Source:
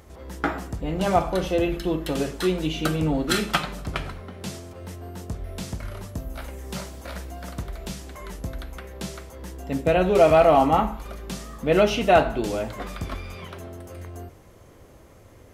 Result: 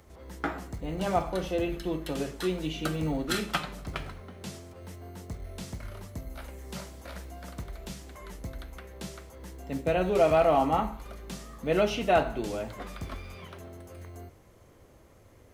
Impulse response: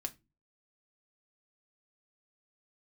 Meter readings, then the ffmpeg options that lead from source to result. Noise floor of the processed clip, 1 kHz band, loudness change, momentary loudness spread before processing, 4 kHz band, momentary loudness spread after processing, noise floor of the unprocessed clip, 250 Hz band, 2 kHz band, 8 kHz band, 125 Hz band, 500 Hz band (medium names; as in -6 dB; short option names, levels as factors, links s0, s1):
-56 dBFS, -6.5 dB, -6.5 dB, 20 LU, -6.5 dB, 20 LU, -50 dBFS, -6.5 dB, -6.5 dB, -6.5 dB, -6.5 dB, -6.5 dB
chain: -filter_complex "[0:a]acrossover=split=150|5300[s0][s1][s2];[s0]acrusher=samples=21:mix=1:aa=0.000001[s3];[s3][s1][s2]amix=inputs=3:normalize=0,volume=0.473"